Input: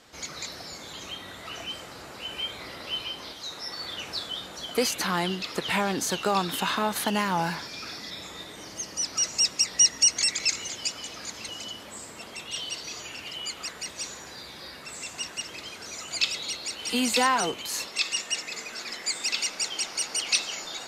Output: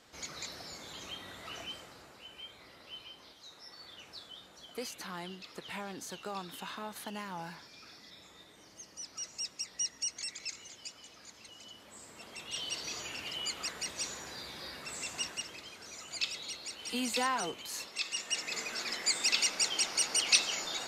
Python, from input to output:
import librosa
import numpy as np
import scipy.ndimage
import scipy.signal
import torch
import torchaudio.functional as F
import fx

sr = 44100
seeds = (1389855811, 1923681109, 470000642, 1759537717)

y = fx.gain(x, sr, db=fx.line((1.59, -6.0), (2.33, -15.5), (11.51, -15.5), (12.84, -2.5), (15.22, -2.5), (15.64, -9.0), (18.08, -9.0), (18.57, -1.0)))